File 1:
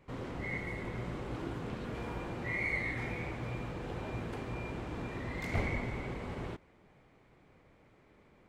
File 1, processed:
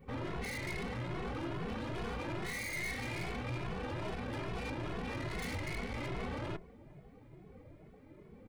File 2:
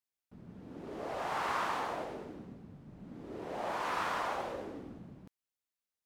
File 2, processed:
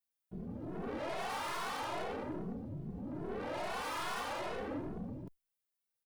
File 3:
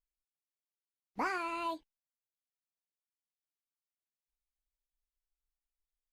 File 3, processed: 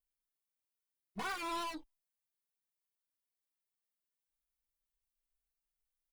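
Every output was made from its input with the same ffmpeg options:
-filter_complex "[0:a]afftdn=nr=13:nf=-58,adynamicequalizer=threshold=0.00126:dfrequency=5600:dqfactor=0.92:tfrequency=5600:tqfactor=0.92:attack=5:release=100:ratio=0.375:range=1.5:mode=boostabove:tftype=bell,acompressor=threshold=-37dB:ratio=8,aeval=exprs='(tanh(282*val(0)+0.35)-tanh(0.35))/282':c=same,aexciter=amount=1.8:drive=5.4:freq=9.2k,asplit=2[a][b];[b]adelay=2.3,afreqshift=2.4[c];[a][c]amix=inputs=2:normalize=1,volume=14.5dB"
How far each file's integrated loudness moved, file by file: -1.5, -3.0, -3.0 LU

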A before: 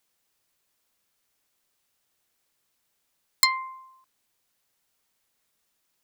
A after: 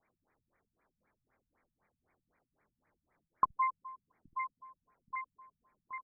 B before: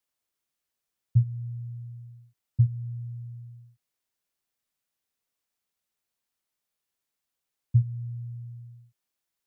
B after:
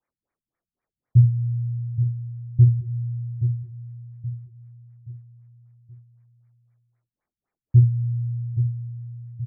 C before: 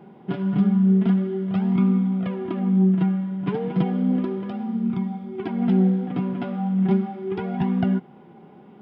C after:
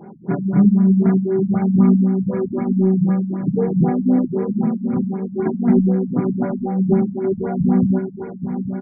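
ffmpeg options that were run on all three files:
-filter_complex "[0:a]asplit=2[a][b];[b]aecho=0:1:24|74:0.562|0.376[c];[a][c]amix=inputs=2:normalize=0,asoftclip=type=tanh:threshold=-8dB,asplit=2[d][e];[e]aecho=0:1:825|1650|2475|3300:0.335|0.137|0.0563|0.0231[f];[d][f]amix=inputs=2:normalize=0,afftfilt=real='re*lt(b*sr/1024,200*pow(2500/200,0.5+0.5*sin(2*PI*3.9*pts/sr)))':imag='im*lt(b*sr/1024,200*pow(2500/200,0.5+0.5*sin(2*PI*3.9*pts/sr)))':win_size=1024:overlap=0.75,volume=6dB"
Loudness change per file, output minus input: -13.5, +7.5, +4.5 LU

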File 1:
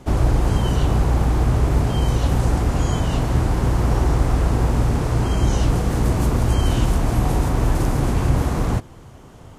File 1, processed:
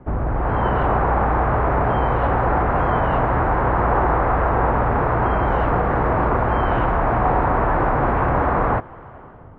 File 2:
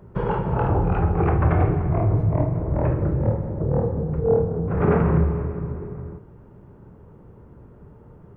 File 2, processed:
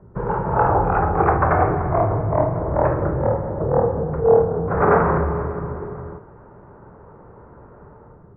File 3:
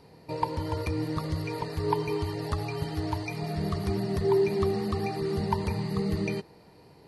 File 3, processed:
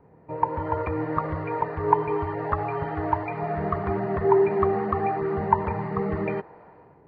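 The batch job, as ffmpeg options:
-filter_complex "[0:a]acrossover=split=520[a][b];[a]asoftclip=type=hard:threshold=-18.5dB[c];[b]dynaudnorm=f=130:g=7:m=13dB[d];[c][d]amix=inputs=2:normalize=0,lowpass=f=1.7k:w=0.5412,lowpass=f=1.7k:w=1.3066,volume=-1dB"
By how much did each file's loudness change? +1.0, +2.5, +4.0 LU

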